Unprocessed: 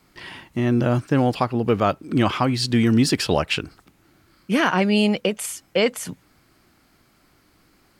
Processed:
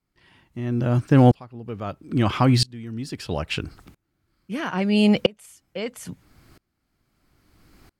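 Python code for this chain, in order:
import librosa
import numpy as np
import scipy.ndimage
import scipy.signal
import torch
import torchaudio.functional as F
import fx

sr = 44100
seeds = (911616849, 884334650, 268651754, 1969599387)

p1 = fx.rider(x, sr, range_db=10, speed_s=0.5)
p2 = x + F.gain(torch.from_numpy(p1), 0.0).numpy()
p3 = fx.low_shelf(p2, sr, hz=150.0, db=10.5)
p4 = fx.tremolo_decay(p3, sr, direction='swelling', hz=0.76, depth_db=29)
y = F.gain(torch.from_numpy(p4), -2.0).numpy()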